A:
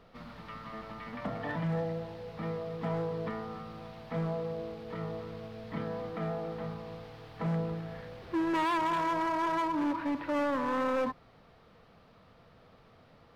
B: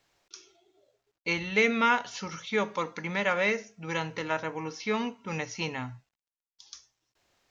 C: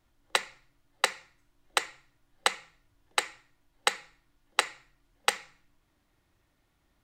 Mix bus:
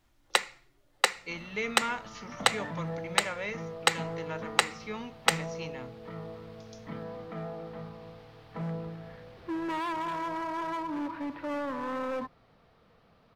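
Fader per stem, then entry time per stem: -3.5, -9.5, +1.5 dB; 1.15, 0.00, 0.00 s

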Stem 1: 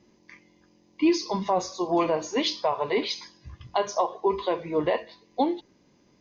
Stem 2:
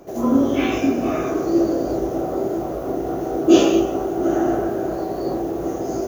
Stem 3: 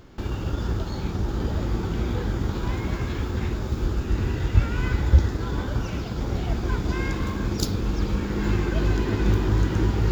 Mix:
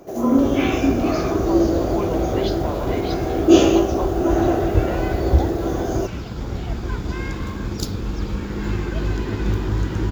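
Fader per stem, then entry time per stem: -6.0, +0.5, -0.5 dB; 0.00, 0.00, 0.20 s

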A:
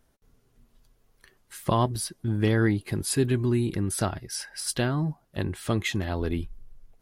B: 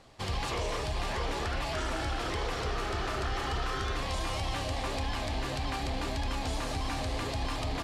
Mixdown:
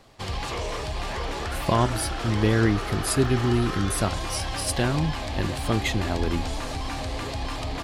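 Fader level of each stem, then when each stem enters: +1.5, +2.5 dB; 0.00, 0.00 s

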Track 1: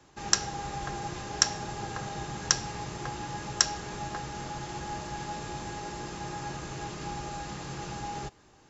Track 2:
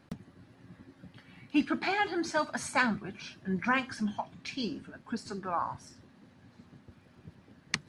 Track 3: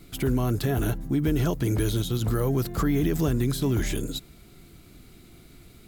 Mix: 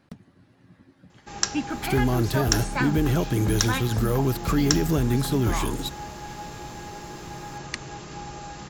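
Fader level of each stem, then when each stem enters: -0.5, -1.0, +1.5 dB; 1.10, 0.00, 1.70 s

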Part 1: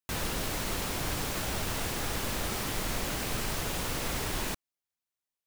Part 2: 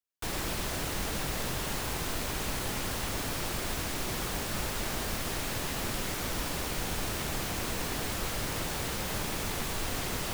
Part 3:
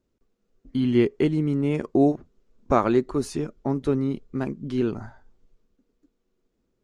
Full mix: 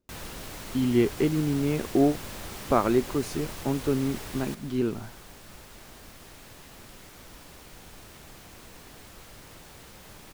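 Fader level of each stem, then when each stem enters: -7.0, -14.5, -2.5 dB; 0.00, 0.95, 0.00 s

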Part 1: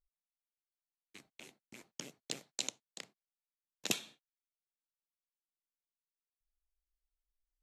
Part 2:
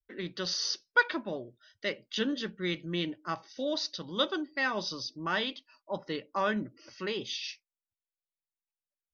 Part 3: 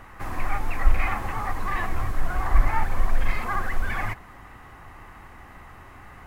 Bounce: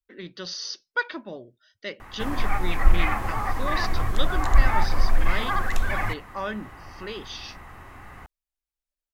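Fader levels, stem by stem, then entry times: -6.0, -1.5, +1.5 dB; 1.85, 0.00, 2.00 s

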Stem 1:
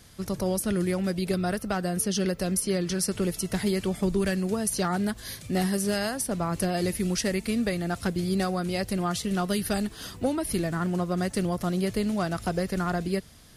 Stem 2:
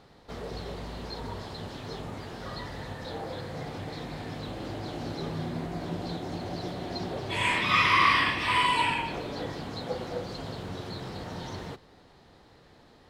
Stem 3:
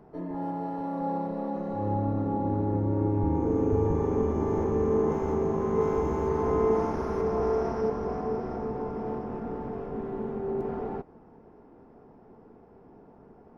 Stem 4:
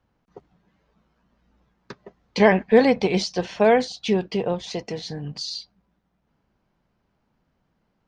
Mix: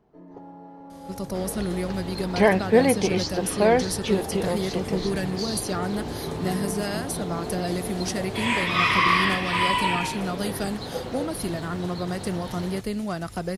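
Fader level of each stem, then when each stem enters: -2.0, +1.5, -11.0, -2.5 dB; 0.90, 1.05, 0.00, 0.00 s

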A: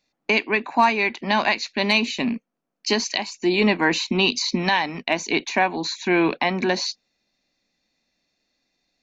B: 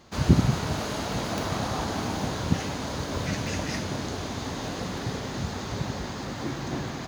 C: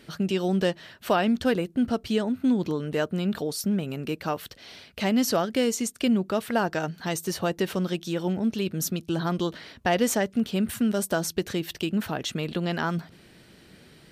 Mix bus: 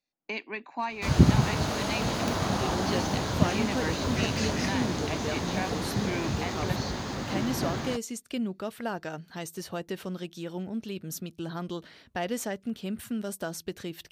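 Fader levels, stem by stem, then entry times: -15.0, +0.5, -8.5 dB; 0.00, 0.90, 2.30 s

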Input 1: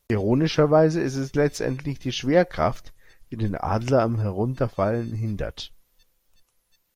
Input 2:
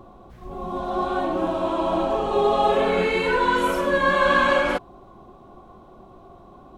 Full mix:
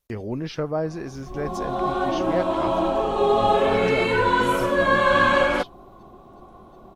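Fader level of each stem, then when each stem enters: -8.5, +0.5 dB; 0.00, 0.85 s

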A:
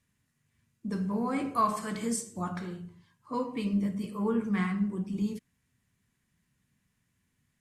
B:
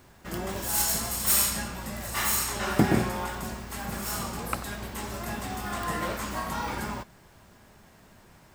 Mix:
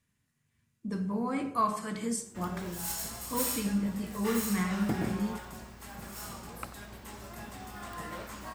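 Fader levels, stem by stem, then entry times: -1.5, -10.0 dB; 0.00, 2.10 s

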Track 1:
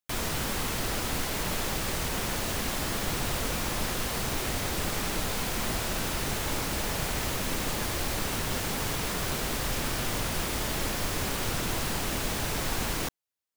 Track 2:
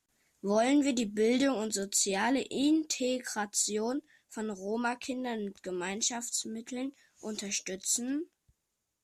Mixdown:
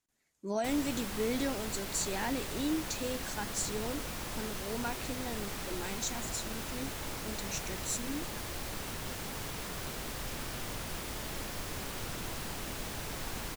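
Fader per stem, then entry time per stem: -9.0, -6.0 dB; 0.55, 0.00 s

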